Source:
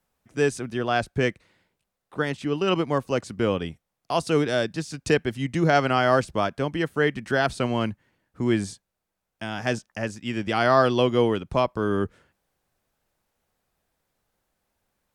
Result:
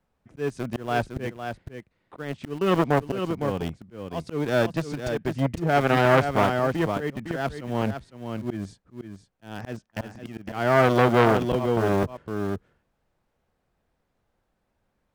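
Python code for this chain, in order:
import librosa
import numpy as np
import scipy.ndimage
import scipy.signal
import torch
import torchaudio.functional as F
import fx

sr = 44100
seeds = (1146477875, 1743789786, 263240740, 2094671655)

p1 = fx.lowpass(x, sr, hz=2300.0, slope=6)
p2 = fx.low_shelf(p1, sr, hz=470.0, db=4.0)
p3 = np.where(np.abs(p2) >= 10.0 ** (-24.0 / 20.0), p2, 0.0)
p4 = p2 + (p3 * librosa.db_to_amplitude(-5.0))
p5 = fx.auto_swell(p4, sr, attack_ms=367.0)
p6 = p5 + fx.echo_single(p5, sr, ms=508, db=-9.0, dry=0)
p7 = fx.transformer_sat(p6, sr, knee_hz=1200.0)
y = p7 * librosa.db_to_amplitude(1.0)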